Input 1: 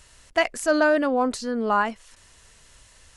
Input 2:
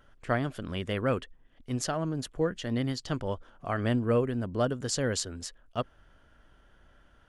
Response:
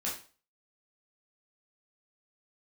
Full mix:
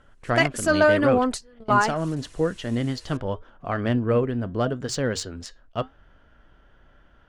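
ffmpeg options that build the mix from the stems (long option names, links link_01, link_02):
-filter_complex "[0:a]aphaser=in_gain=1:out_gain=1:delay=3.4:decay=0.38:speed=0.89:type=triangular,volume=1dB[link_01];[1:a]acontrast=61,flanger=delay=3.8:depth=3.9:regen=-82:speed=0.81:shape=triangular,adynamicsmooth=sensitivity=2.5:basefreq=5000,volume=2.5dB,asplit=2[link_02][link_03];[link_03]apad=whole_len=139748[link_04];[link_01][link_04]sidechaingate=range=-27dB:threshold=-45dB:ratio=16:detection=peak[link_05];[link_05][link_02]amix=inputs=2:normalize=0"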